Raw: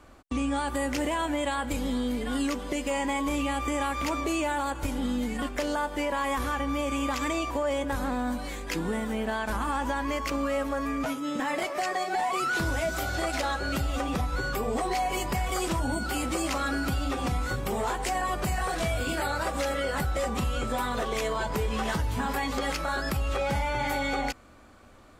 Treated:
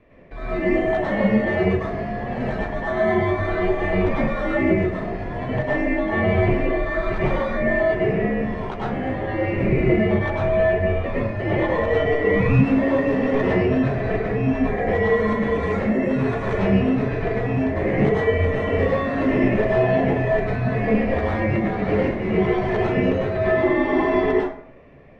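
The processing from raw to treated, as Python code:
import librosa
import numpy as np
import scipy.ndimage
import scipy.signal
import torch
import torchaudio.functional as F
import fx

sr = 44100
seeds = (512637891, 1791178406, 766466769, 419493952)

p1 = scipy.signal.sosfilt(scipy.signal.butter(8, 530.0, 'highpass', fs=sr, output='sos'), x)
p2 = p1 * np.sin(2.0 * np.pi * 1200.0 * np.arange(len(p1)) / sr)
p3 = fx.schmitt(p2, sr, flips_db=-37.0)
p4 = p2 + F.gain(torch.from_numpy(p3), -11.5).numpy()
p5 = scipy.signal.sosfilt(scipy.signal.butter(2, 1100.0, 'lowpass', fs=sr, output='sos'), p4)
p6 = fx.rev_plate(p5, sr, seeds[0], rt60_s=0.58, hf_ratio=0.6, predelay_ms=90, drr_db=-6.5)
y = F.gain(torch.from_numpy(p6), 8.5).numpy()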